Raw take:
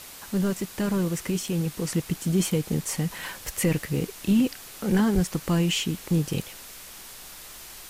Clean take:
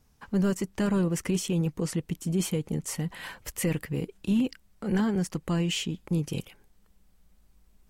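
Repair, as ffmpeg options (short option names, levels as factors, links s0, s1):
-filter_complex "[0:a]asplit=3[s0][s1][s2];[s0]afade=t=out:st=5.14:d=0.02[s3];[s1]highpass=f=140:w=0.5412,highpass=f=140:w=1.3066,afade=t=in:st=5.14:d=0.02,afade=t=out:st=5.26:d=0.02[s4];[s2]afade=t=in:st=5.26:d=0.02[s5];[s3][s4][s5]amix=inputs=3:normalize=0,afwtdn=0.0079,asetnsamples=n=441:p=0,asendcmd='1.87 volume volume -4dB',volume=1"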